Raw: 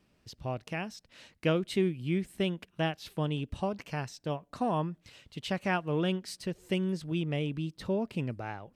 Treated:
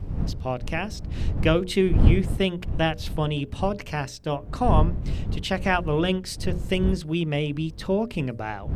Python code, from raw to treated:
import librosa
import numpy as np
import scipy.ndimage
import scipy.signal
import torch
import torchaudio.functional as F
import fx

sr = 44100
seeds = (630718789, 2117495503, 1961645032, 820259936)

y = fx.dmg_wind(x, sr, seeds[0], corner_hz=88.0, level_db=-31.0)
y = fx.low_shelf(y, sr, hz=180.0, db=-3.0)
y = fx.hum_notches(y, sr, base_hz=60, count=10)
y = y * 10.0 ** (8.0 / 20.0)